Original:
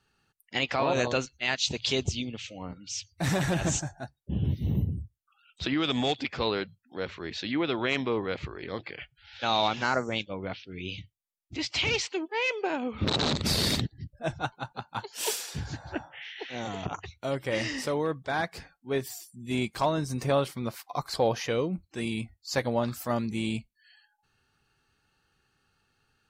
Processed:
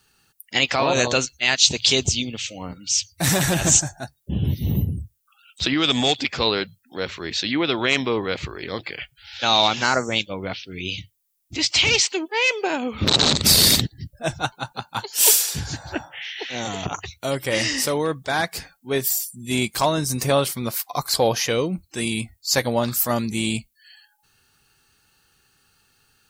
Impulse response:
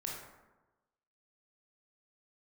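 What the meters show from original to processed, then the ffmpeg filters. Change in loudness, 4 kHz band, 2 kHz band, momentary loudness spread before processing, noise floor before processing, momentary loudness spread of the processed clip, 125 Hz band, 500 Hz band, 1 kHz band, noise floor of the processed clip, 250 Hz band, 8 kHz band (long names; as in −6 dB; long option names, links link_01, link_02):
+9.5 dB, +11.5 dB, +8.5 dB, 12 LU, −75 dBFS, 15 LU, +5.5 dB, +6.0 dB, +6.5 dB, −66 dBFS, +5.5 dB, +16.5 dB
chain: -af "aemphasis=mode=production:type=75kf,volume=5.5dB"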